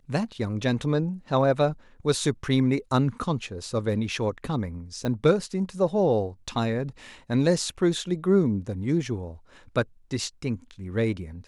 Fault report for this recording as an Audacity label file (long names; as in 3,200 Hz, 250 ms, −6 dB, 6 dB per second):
5.050000	5.050000	click −17 dBFS